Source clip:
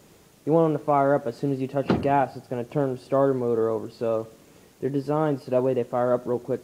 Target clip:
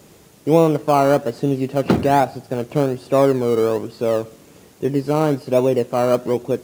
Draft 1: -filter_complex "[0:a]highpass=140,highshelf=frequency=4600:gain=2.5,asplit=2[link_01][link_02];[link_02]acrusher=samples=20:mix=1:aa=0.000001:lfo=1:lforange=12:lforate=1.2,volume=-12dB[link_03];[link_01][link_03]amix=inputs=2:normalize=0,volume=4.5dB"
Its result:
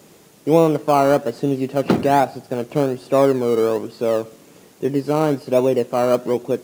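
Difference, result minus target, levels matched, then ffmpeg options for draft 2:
125 Hz band −2.5 dB
-filter_complex "[0:a]highpass=40,highshelf=frequency=4600:gain=2.5,asplit=2[link_01][link_02];[link_02]acrusher=samples=20:mix=1:aa=0.000001:lfo=1:lforange=12:lforate=1.2,volume=-12dB[link_03];[link_01][link_03]amix=inputs=2:normalize=0,volume=4.5dB"

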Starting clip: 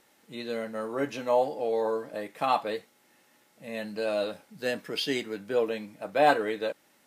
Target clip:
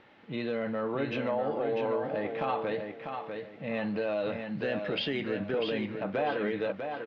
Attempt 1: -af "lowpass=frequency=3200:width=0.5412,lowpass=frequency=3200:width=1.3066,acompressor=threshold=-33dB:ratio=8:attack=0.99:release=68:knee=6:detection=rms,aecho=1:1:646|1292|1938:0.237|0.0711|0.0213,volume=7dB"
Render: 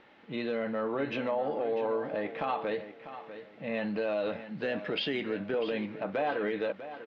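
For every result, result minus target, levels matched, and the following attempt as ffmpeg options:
echo-to-direct −6.5 dB; 125 Hz band −4.0 dB
-af "lowpass=frequency=3200:width=0.5412,lowpass=frequency=3200:width=1.3066,acompressor=threshold=-33dB:ratio=8:attack=0.99:release=68:knee=6:detection=rms,aecho=1:1:646|1292|1938|2584:0.501|0.15|0.0451|0.0135,volume=7dB"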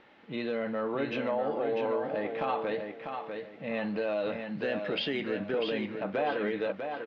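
125 Hz band −3.5 dB
-af "lowpass=frequency=3200:width=0.5412,lowpass=frequency=3200:width=1.3066,equalizer=frequency=110:width_type=o:width=0.95:gain=7,acompressor=threshold=-33dB:ratio=8:attack=0.99:release=68:knee=6:detection=rms,aecho=1:1:646|1292|1938|2584:0.501|0.15|0.0451|0.0135,volume=7dB"

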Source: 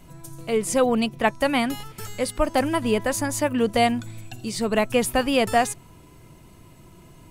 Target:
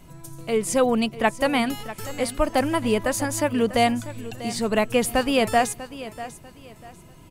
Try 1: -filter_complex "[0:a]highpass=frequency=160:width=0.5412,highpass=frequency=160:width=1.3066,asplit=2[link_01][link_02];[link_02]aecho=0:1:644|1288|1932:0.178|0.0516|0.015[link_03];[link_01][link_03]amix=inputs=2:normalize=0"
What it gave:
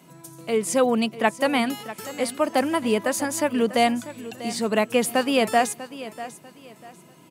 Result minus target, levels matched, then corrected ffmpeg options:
125 Hz band −6.5 dB
-filter_complex "[0:a]asplit=2[link_01][link_02];[link_02]aecho=0:1:644|1288|1932:0.178|0.0516|0.015[link_03];[link_01][link_03]amix=inputs=2:normalize=0"

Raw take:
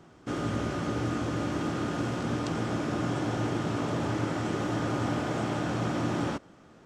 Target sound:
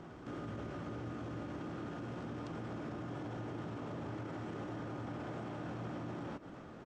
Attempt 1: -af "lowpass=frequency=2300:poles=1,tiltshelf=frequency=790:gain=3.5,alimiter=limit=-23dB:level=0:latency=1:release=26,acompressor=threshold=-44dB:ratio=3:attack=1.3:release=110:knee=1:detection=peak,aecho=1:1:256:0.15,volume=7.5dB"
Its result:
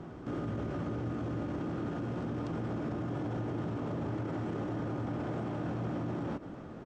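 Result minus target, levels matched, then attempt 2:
downward compressor: peak gain reduction −6.5 dB; 1,000 Hz band −2.5 dB
-af "lowpass=frequency=2300:poles=1,alimiter=limit=-23dB:level=0:latency=1:release=26,acompressor=threshold=-54dB:ratio=3:attack=1.3:release=110:knee=1:detection=peak,aecho=1:1:256:0.15,volume=7.5dB"

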